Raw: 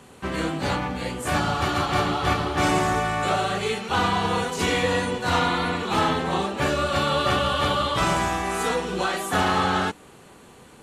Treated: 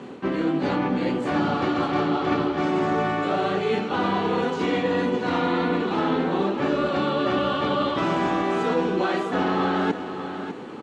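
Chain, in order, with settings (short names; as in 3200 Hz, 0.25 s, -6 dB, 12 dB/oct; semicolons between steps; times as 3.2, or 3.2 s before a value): HPF 150 Hz 12 dB/oct; bell 300 Hz +10 dB 1.3 oct; reverse; compressor 6:1, threshold -27 dBFS, peak gain reduction 13.5 dB; reverse; air absorption 160 m; on a send: feedback echo 0.598 s, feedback 29%, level -10 dB; on the sum: gain +6.5 dB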